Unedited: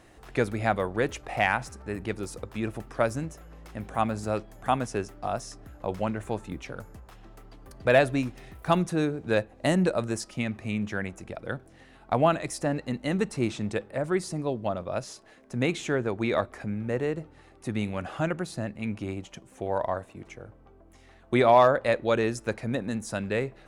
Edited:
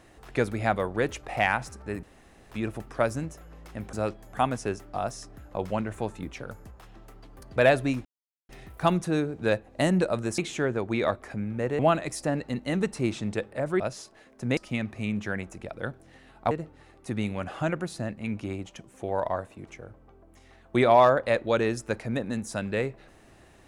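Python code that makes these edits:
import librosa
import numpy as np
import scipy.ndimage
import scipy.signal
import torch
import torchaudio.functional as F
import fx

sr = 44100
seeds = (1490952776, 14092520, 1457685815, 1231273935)

y = fx.edit(x, sr, fx.room_tone_fill(start_s=2.03, length_s=0.48),
    fx.cut(start_s=3.93, length_s=0.29),
    fx.insert_silence(at_s=8.34, length_s=0.44),
    fx.swap(start_s=10.23, length_s=1.94, other_s=15.68, other_length_s=1.41),
    fx.cut(start_s=14.18, length_s=0.73), tone=tone)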